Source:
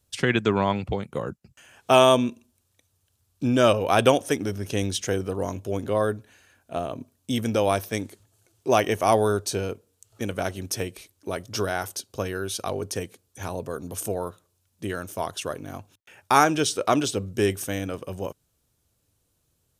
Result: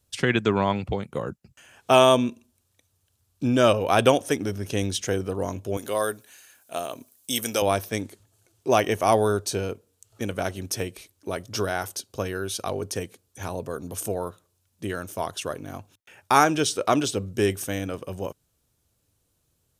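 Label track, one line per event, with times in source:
5.770000	7.620000	RIAA curve recording

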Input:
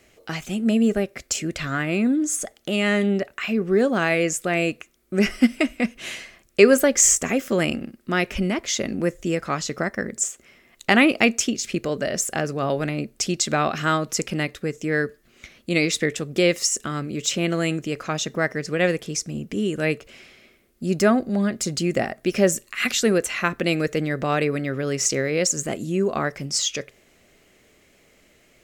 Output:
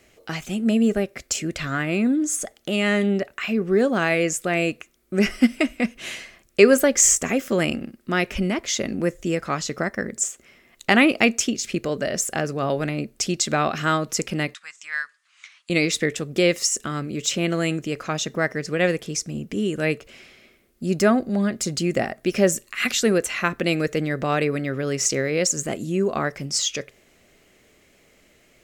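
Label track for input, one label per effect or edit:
14.540000	15.700000	elliptic band-pass 1–8.8 kHz

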